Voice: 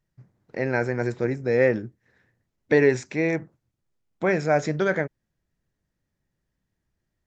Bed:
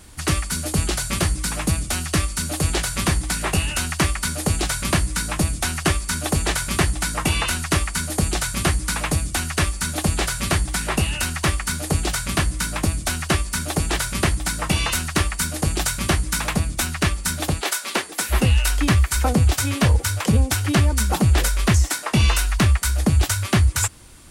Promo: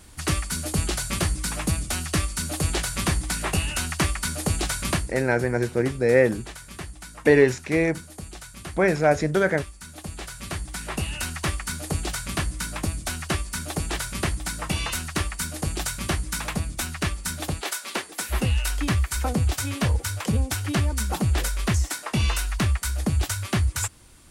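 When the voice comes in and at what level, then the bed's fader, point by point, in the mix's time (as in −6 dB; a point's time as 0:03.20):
4.55 s, +2.0 dB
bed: 0:04.91 −3.5 dB
0:05.25 −17.5 dB
0:09.80 −17.5 dB
0:11.19 −6 dB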